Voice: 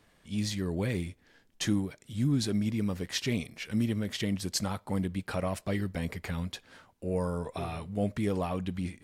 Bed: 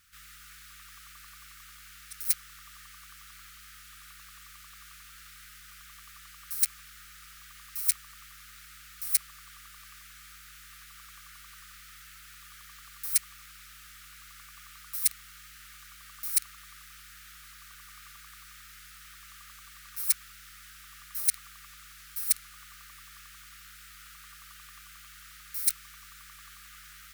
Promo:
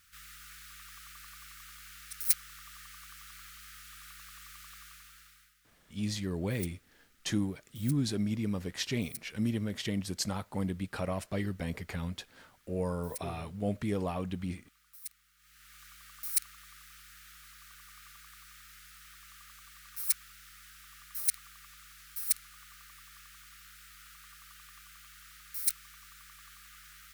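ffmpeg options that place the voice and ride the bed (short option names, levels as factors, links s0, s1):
-filter_complex "[0:a]adelay=5650,volume=0.75[s0];[1:a]volume=5.62,afade=t=out:st=4.72:d=0.82:silence=0.11885,afade=t=in:st=15.37:d=0.46:silence=0.177828[s1];[s0][s1]amix=inputs=2:normalize=0"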